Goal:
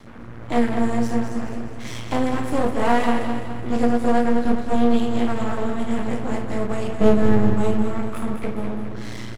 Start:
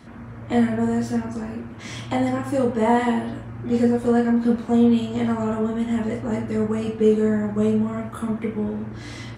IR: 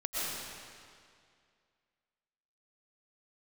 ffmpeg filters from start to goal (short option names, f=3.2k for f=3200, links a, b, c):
-filter_complex "[0:a]asettb=1/sr,asplit=3[a][b][c];[a]atrim=end=7.014[d];[b]atrim=start=7.01:end=7.55,asetpts=PTS-STARTPTS,afade=t=in:d=0.004:c=qsin,afade=t=out:st=0.536:d=0.004:c=qsin,bass=f=250:g=12,treble=f=4k:g=-4[e];[c]atrim=start=7.546[f];[d][e]acrossfade=d=0.004:c1=hsin:c2=qsin[g];[g][f]acrossfade=d=0.004:c1=qsin:c2=hsin,aeval=exprs='max(val(0),0)':c=same,aecho=1:1:208|416|624|832|1040|1248:0.398|0.199|0.0995|0.0498|0.0249|0.0124,volume=3.5dB"